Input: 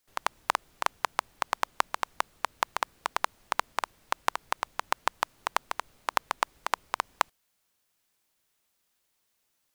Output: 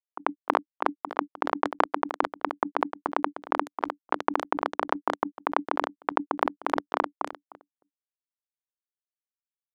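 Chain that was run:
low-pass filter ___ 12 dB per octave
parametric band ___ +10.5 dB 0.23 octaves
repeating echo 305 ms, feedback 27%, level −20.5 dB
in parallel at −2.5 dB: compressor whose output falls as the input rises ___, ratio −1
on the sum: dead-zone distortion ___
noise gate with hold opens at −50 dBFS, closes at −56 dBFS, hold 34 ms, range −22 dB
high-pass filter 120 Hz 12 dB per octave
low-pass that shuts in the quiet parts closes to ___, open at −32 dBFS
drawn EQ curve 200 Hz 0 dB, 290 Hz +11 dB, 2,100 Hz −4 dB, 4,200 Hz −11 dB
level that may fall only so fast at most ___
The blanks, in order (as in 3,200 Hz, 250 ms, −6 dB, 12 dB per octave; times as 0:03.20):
3,600 Hz, 380 Hz, −34 dBFS, −35 dBFS, 770 Hz, 130 dB per second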